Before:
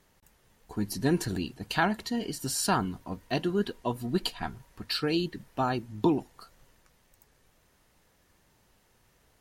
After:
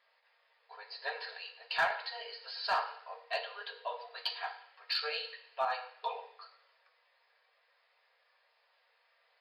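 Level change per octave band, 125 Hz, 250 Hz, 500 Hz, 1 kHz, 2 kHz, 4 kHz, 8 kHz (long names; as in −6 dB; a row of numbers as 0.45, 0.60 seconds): below −35 dB, below −40 dB, −9.5 dB, −3.5 dB, −1.0 dB, −2.5 dB, below −25 dB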